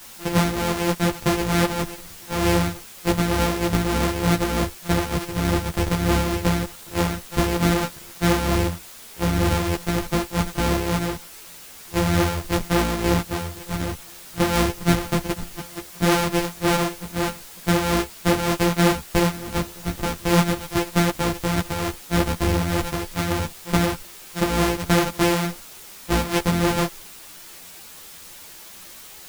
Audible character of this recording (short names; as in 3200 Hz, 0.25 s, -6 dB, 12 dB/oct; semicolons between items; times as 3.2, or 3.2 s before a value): a buzz of ramps at a fixed pitch in blocks of 256 samples; tremolo triangle 3.3 Hz, depth 55%; a quantiser's noise floor 8-bit, dither triangular; a shimmering, thickened sound